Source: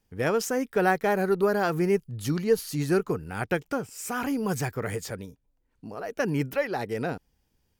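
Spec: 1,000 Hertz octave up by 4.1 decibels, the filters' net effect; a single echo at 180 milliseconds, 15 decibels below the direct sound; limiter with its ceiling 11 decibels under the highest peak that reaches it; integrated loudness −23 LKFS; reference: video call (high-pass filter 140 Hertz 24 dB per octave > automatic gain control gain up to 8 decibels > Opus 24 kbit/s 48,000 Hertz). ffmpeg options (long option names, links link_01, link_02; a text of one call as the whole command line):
ffmpeg -i in.wav -af "equalizer=frequency=1000:width_type=o:gain=6,alimiter=limit=-17.5dB:level=0:latency=1,highpass=frequency=140:width=0.5412,highpass=frequency=140:width=1.3066,aecho=1:1:180:0.178,dynaudnorm=maxgain=8dB,volume=6.5dB" -ar 48000 -c:a libopus -b:a 24k out.opus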